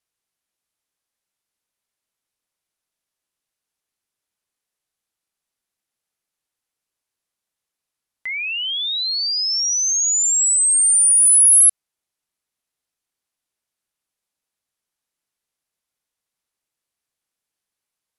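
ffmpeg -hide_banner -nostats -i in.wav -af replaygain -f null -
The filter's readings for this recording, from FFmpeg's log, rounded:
track_gain = +3.8 dB
track_peak = 0.298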